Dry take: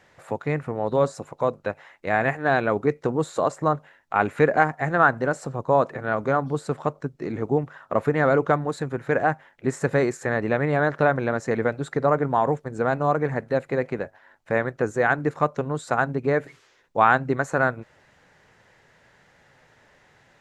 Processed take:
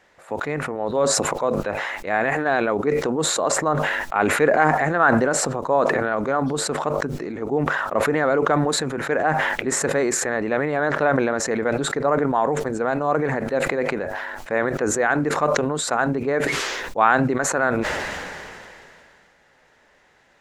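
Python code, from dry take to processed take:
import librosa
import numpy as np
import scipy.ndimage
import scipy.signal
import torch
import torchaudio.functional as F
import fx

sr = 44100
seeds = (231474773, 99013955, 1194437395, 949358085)

y = fx.peak_eq(x, sr, hz=120.0, db=-12.0, octaves=0.86)
y = fx.sustainer(y, sr, db_per_s=23.0)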